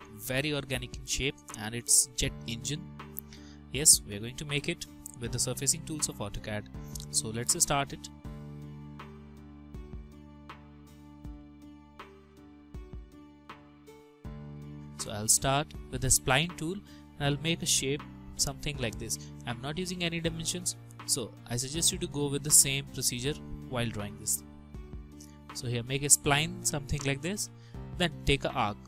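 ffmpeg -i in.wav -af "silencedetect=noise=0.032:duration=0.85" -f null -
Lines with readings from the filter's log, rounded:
silence_start: 8.05
silence_end: 15.00 | silence_duration: 6.95
silence_start: 24.35
silence_end: 25.57 | silence_duration: 1.21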